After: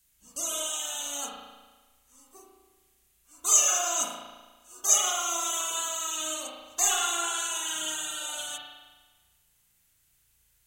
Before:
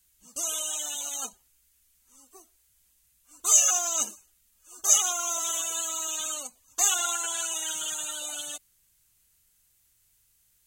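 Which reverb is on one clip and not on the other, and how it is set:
spring reverb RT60 1.3 s, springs 35 ms, chirp 25 ms, DRR −2.5 dB
level −1.5 dB

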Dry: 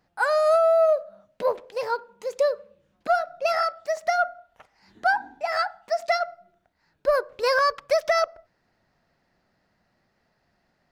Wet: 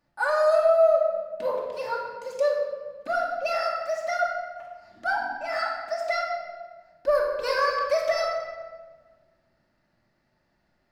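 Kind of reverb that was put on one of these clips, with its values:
rectangular room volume 1,300 cubic metres, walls mixed, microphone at 2.5 metres
level −6.5 dB

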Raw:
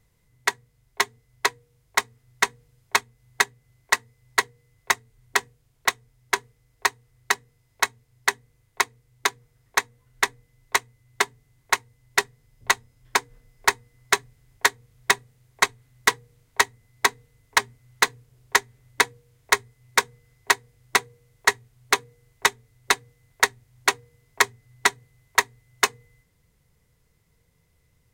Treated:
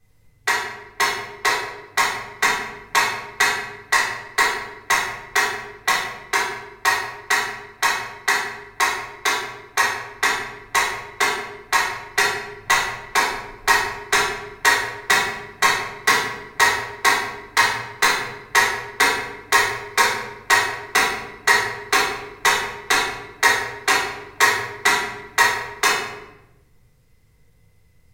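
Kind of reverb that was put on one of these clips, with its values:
rectangular room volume 390 cubic metres, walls mixed, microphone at 3.7 metres
level −4.5 dB

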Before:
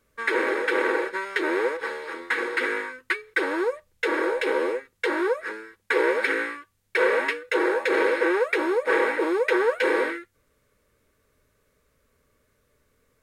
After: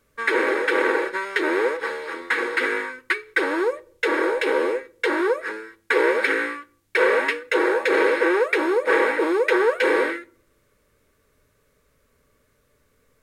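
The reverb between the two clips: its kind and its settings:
rectangular room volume 600 cubic metres, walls furnished, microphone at 0.31 metres
level +3 dB

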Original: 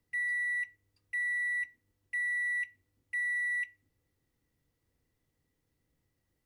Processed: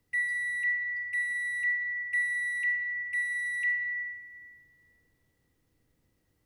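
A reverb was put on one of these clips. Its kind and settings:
comb and all-pass reverb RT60 3.2 s, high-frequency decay 0.3×, pre-delay 5 ms, DRR 4 dB
level +4.5 dB

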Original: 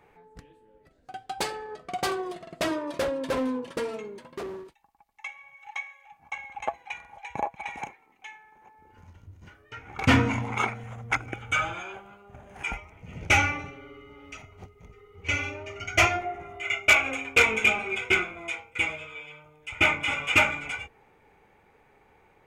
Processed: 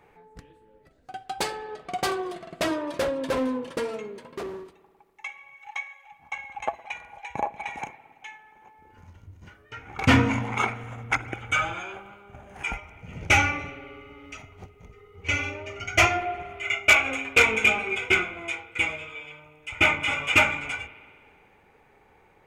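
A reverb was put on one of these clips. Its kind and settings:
spring reverb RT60 2 s, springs 56 ms, chirp 65 ms, DRR 16.5 dB
level +1.5 dB

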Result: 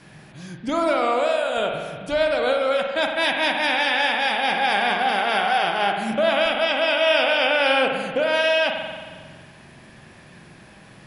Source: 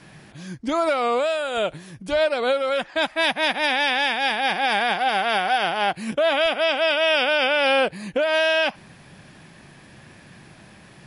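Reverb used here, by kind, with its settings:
spring reverb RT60 1.6 s, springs 45 ms, chirp 55 ms, DRR 2.5 dB
level −1 dB

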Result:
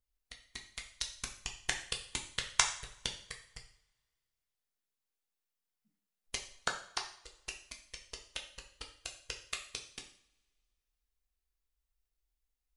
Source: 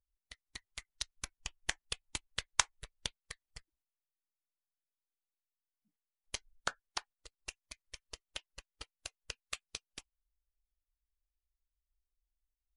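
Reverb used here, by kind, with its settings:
coupled-rooms reverb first 0.53 s, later 2 s, from −25 dB, DRR 2 dB
level +1 dB

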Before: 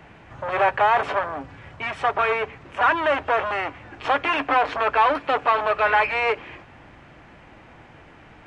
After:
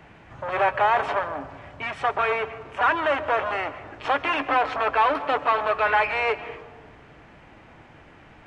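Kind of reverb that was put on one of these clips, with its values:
comb and all-pass reverb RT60 1.5 s, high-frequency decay 0.25×, pre-delay 95 ms, DRR 14 dB
level −2 dB

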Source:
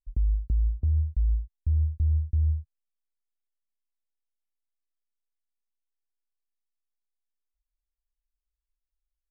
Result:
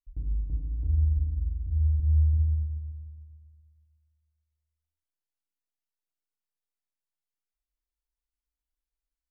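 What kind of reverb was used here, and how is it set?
feedback delay network reverb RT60 2 s, low-frequency decay 1.05×, high-frequency decay 0.55×, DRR −5 dB
level −9.5 dB

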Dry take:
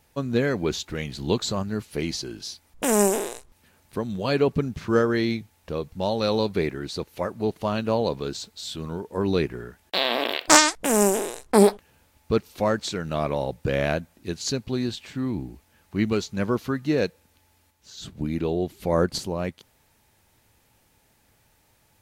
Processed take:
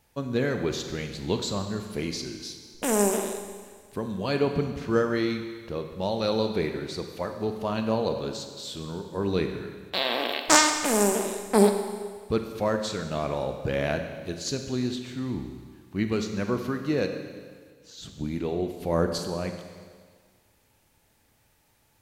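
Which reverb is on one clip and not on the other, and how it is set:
four-comb reverb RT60 1.7 s, combs from 32 ms, DRR 6 dB
level −3.5 dB

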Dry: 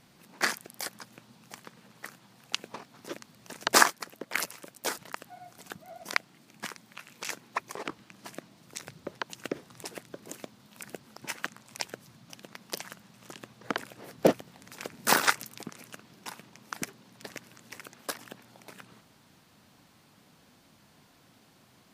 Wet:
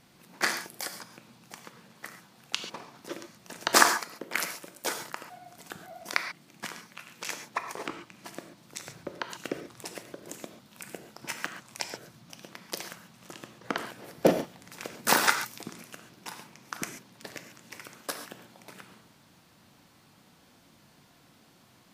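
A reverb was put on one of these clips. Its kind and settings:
reverb whose tail is shaped and stops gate 160 ms flat, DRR 6 dB

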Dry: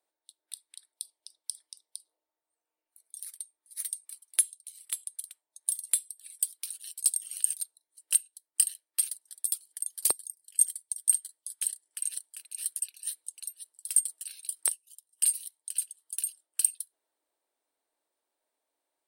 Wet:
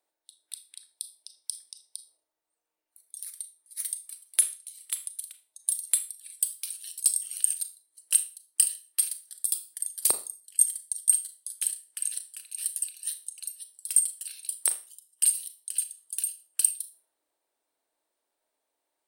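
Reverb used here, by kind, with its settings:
four-comb reverb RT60 0.35 s, combs from 26 ms, DRR 9.5 dB
level +2 dB

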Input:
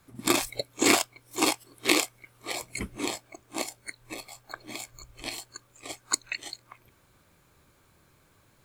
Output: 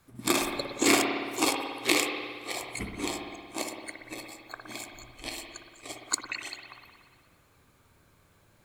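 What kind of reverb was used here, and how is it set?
spring reverb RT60 1.7 s, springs 57 ms, chirp 45 ms, DRR 2.5 dB
level −2 dB

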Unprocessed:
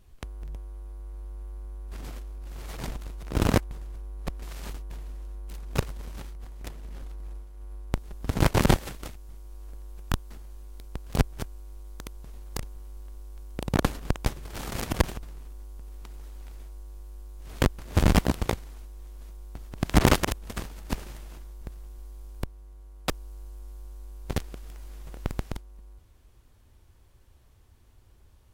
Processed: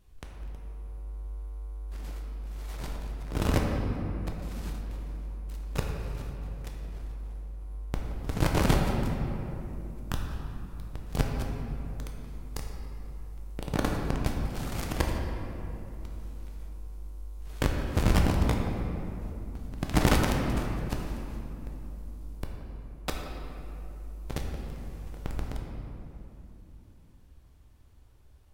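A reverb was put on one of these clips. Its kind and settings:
rectangular room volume 140 cubic metres, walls hard, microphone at 0.41 metres
level −5 dB

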